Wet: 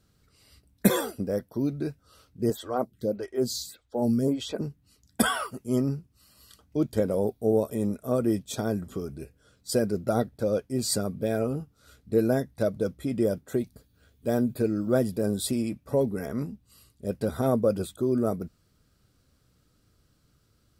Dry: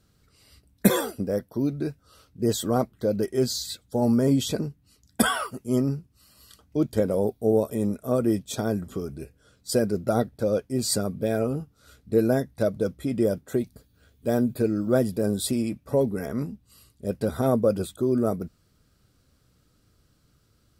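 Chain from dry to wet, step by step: 2.50–4.61 s: lamp-driven phase shifter 1.7 Hz; trim -2 dB

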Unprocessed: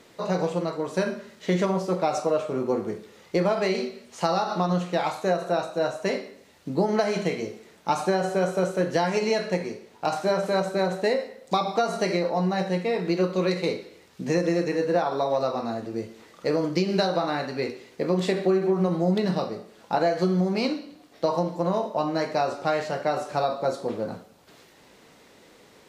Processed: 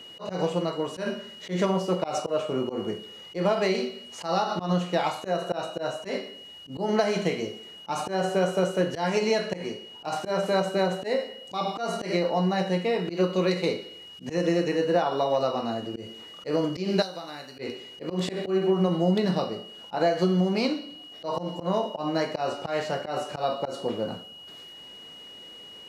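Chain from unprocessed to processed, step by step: whistle 2.9 kHz -43 dBFS; 17.02–17.59 s: pre-emphasis filter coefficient 0.8; slow attack 112 ms

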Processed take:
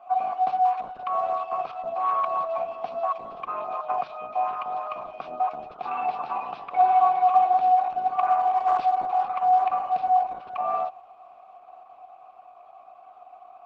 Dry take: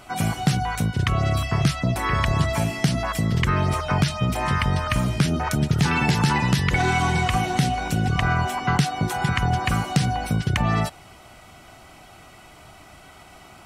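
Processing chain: vowel filter a; cabinet simulation 250–4200 Hz, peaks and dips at 250 Hz +4 dB, 470 Hz +3 dB, 740 Hz +8 dB, 1.1 kHz +10 dB, 1.8 kHz -5 dB, 3 kHz -6 dB; Opus 12 kbps 48 kHz

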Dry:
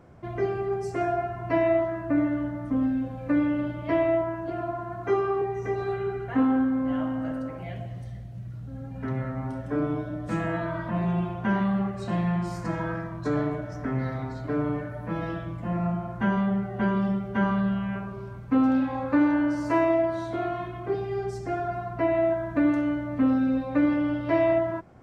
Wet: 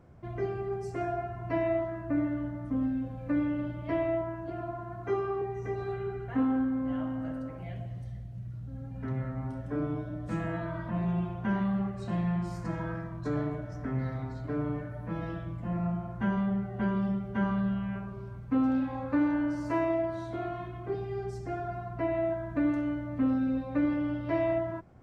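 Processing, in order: bass shelf 160 Hz +7.5 dB; trim -7 dB

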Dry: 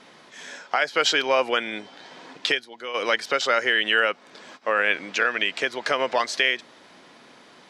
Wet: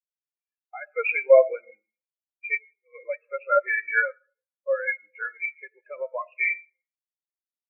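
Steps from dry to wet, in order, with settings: knee-point frequency compression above 2.1 kHz 4:1; companded quantiser 4-bit; on a send at -5 dB: reverberation RT60 1.5 s, pre-delay 15 ms; on the sum: spectral contrast expander 4:1

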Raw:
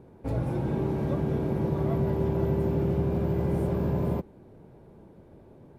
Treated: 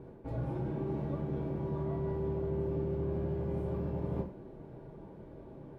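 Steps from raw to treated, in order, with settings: low-pass 2.7 kHz 6 dB/octave; reverse; compression 10:1, threshold -35 dBFS, peak gain reduction 14.5 dB; reverse; gated-style reverb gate 150 ms falling, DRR 0.5 dB

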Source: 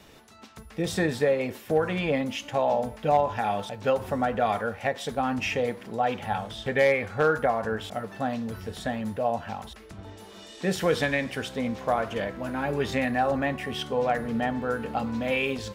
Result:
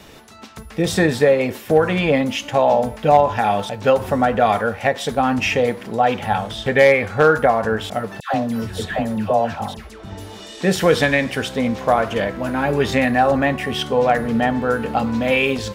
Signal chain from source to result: 8.20–10.40 s: phase dispersion lows, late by 137 ms, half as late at 1 kHz; trim +9 dB

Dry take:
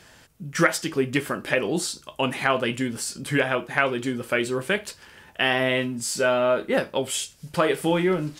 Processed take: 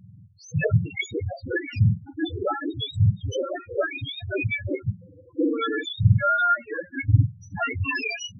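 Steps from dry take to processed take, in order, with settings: spectrum inverted on a logarithmic axis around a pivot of 940 Hz; loudest bins only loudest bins 4; trim +2 dB

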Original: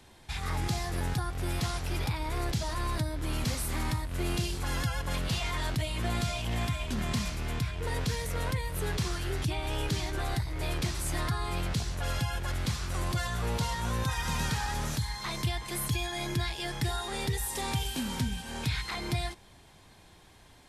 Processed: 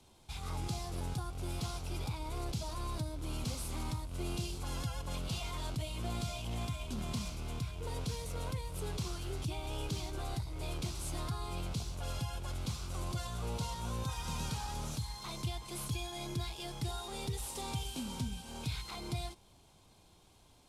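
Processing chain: CVSD coder 64 kbps; peaking EQ 1.8 kHz -14.5 dB 0.41 oct; trim -6.5 dB

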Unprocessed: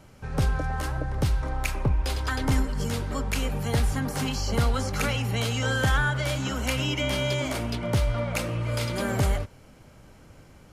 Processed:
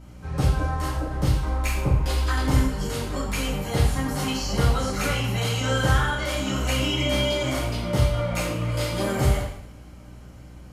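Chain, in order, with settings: two-slope reverb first 0.63 s, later 2.3 s, from -27 dB, DRR -7.5 dB; hum 60 Hz, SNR 21 dB; trim -6 dB

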